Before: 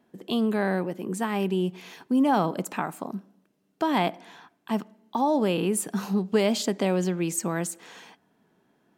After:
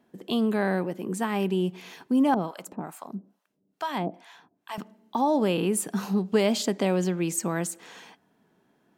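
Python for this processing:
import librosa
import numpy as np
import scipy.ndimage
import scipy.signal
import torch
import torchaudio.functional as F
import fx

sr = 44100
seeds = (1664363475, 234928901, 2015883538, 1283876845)

y = fx.harmonic_tremolo(x, sr, hz=2.3, depth_pct=100, crossover_hz=670.0, at=(2.34, 4.78))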